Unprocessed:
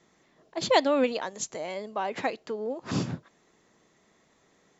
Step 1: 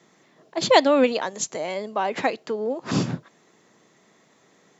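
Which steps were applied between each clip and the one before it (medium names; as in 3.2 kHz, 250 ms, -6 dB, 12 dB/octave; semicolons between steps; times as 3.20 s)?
high-pass 110 Hz 24 dB/octave; trim +6 dB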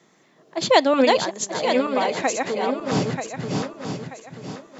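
backward echo that repeats 467 ms, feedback 59%, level -3 dB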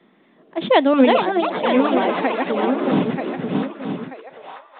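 high-pass sweep 220 Hz -> 890 Hz, 4.03–4.53 s; ever faster or slower copies 619 ms, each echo +5 st, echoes 2, each echo -6 dB; µ-law 64 kbps 8 kHz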